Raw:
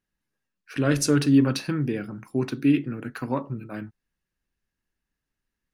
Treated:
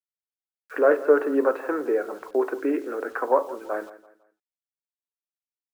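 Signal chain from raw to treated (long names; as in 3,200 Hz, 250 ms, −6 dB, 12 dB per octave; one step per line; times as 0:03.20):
low-pass filter 1,600 Hz 24 dB per octave
downward expander −44 dBFS
Butterworth high-pass 440 Hz 36 dB per octave
spectral tilt −3.5 dB per octave
in parallel at −0.5 dB: downward compressor 6 to 1, threshold −38 dBFS, peak gain reduction 17 dB
on the sum: bit reduction 10 bits
on a send: repeating echo 167 ms, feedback 34%, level −17 dB
0:00.81–0:01.25: on the sum: one half of a high-frequency compander decoder only
level +6.5 dB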